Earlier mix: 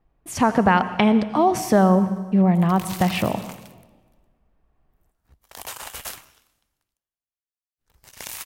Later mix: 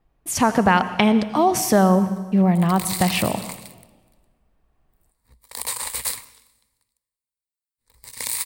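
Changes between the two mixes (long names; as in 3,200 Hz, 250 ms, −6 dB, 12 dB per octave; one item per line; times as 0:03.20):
background: add EQ curve with evenly spaced ripples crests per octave 0.96, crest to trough 11 dB
master: add high-shelf EQ 4,000 Hz +10 dB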